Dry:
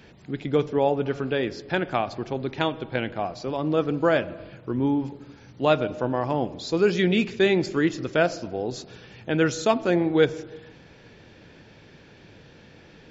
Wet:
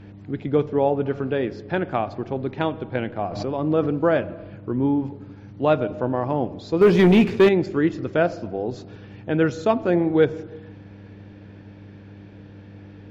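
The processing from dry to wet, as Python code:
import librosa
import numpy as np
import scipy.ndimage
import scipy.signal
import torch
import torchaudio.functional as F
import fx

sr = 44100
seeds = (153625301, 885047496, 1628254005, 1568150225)

y = fx.lowpass(x, sr, hz=1300.0, slope=6)
y = fx.leveller(y, sr, passes=2, at=(6.81, 7.49))
y = fx.dmg_buzz(y, sr, base_hz=100.0, harmonics=3, level_db=-46.0, tilt_db=-4, odd_only=False)
y = fx.pre_swell(y, sr, db_per_s=42.0, at=(3.31, 3.91))
y = y * 10.0 ** (2.5 / 20.0)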